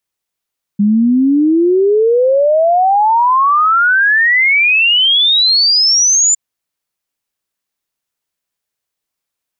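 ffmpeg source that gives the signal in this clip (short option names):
-f lavfi -i "aevalsrc='0.422*clip(min(t,5.56-t)/0.01,0,1)*sin(2*PI*200*5.56/log(7200/200)*(exp(log(7200/200)*t/5.56)-1))':d=5.56:s=44100"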